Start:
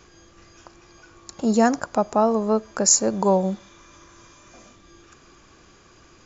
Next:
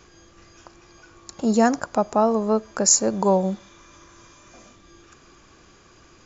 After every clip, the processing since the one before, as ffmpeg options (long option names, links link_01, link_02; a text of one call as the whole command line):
ffmpeg -i in.wav -af anull out.wav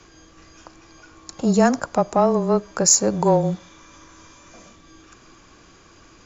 ffmpeg -i in.wav -filter_complex "[0:a]afreqshift=-20,asplit=2[link_01][link_02];[link_02]asoftclip=type=tanh:threshold=-15dB,volume=-10dB[link_03];[link_01][link_03]amix=inputs=2:normalize=0" out.wav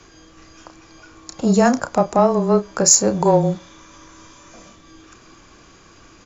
ffmpeg -i in.wav -filter_complex "[0:a]asplit=2[link_01][link_02];[link_02]adelay=31,volume=-10dB[link_03];[link_01][link_03]amix=inputs=2:normalize=0,volume=2dB" out.wav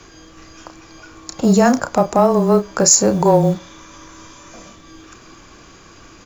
ffmpeg -i in.wav -filter_complex "[0:a]asplit=2[link_01][link_02];[link_02]alimiter=limit=-11dB:level=0:latency=1:release=43,volume=1.5dB[link_03];[link_01][link_03]amix=inputs=2:normalize=0,acrusher=bits=9:mode=log:mix=0:aa=0.000001,volume=-2.5dB" out.wav